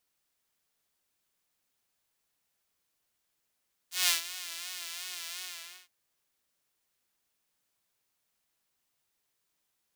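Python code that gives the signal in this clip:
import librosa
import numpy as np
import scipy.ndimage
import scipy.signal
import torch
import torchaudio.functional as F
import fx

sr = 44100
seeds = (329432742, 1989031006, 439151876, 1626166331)

y = fx.sub_patch_vibrato(sr, seeds[0], note=65, wave='saw', wave2='saw', interval_st=0, detune_cents=16, level2_db=-9.0, sub_db=-7.5, noise_db=-18, kind='highpass', cutoff_hz=2500.0, q=0.84, env_oct=1.0, env_decay_s=0.06, env_sustain_pct=40, attack_ms=172.0, decay_s=0.13, sustain_db=-16.0, release_s=0.48, note_s=1.49, lfo_hz=2.8, vibrato_cents=84)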